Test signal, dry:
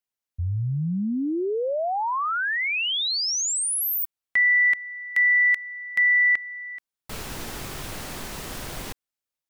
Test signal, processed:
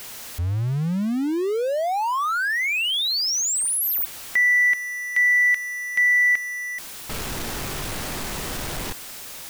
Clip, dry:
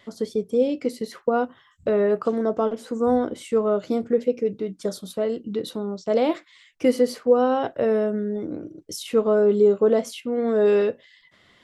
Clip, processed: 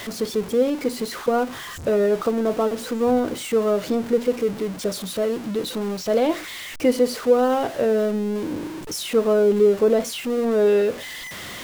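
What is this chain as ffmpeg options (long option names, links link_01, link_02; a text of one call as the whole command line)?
ffmpeg -i in.wav -af "aeval=exprs='val(0)+0.5*0.0335*sgn(val(0))':channel_layout=same" out.wav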